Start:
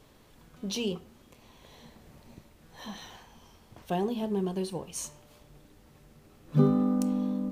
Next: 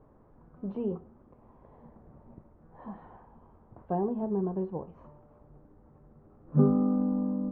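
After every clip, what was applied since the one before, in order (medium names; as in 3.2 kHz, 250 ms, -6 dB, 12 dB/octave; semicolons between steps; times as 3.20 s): low-pass 1.2 kHz 24 dB/octave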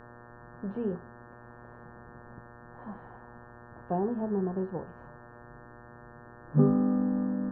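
mains buzz 120 Hz, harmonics 15, -51 dBFS -2 dB/octave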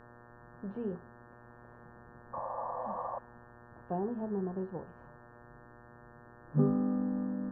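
painted sound noise, 2.33–3.19 s, 490–1200 Hz -33 dBFS; trim -5 dB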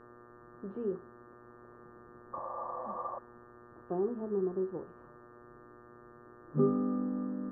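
small resonant body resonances 360/1200 Hz, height 13 dB, ringing for 20 ms; trim -6.5 dB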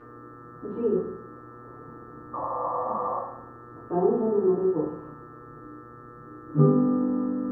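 FDN reverb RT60 0.76 s, low-frequency decay 1.1×, high-frequency decay 0.65×, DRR -9 dB; trim +1.5 dB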